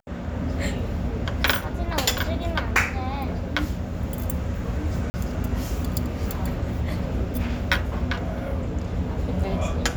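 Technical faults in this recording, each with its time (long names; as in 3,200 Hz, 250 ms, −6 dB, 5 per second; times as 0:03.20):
0:05.10–0:05.14: drop-out 40 ms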